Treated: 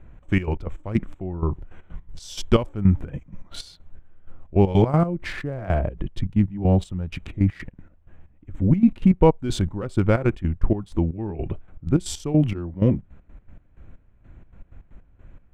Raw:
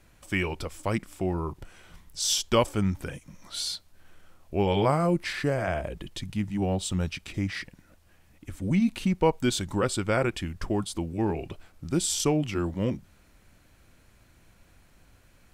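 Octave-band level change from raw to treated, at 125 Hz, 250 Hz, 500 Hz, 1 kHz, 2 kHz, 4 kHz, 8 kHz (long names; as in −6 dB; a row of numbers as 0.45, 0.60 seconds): +8.5, +6.0, +3.0, +0.5, −2.0, −6.0, −9.0 decibels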